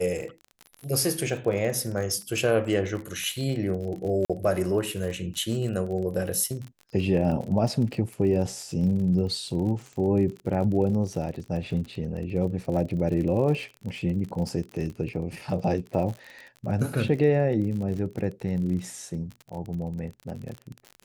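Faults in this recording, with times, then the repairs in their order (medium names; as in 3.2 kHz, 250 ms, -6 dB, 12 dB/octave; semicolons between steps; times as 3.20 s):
crackle 40 per s -33 dBFS
4.25–4.30 s: dropout 46 ms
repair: de-click; interpolate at 4.25 s, 46 ms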